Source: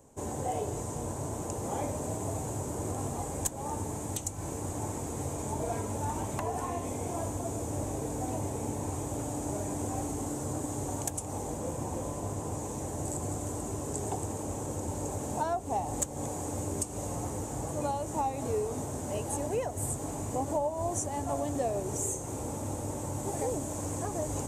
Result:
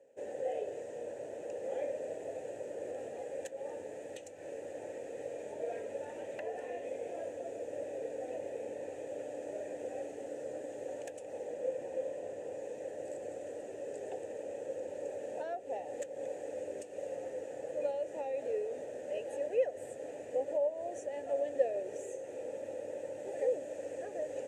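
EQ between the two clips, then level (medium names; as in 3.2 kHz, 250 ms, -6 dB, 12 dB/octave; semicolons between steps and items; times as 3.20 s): vowel filter e; bass shelf 230 Hz -7.5 dB; +7.5 dB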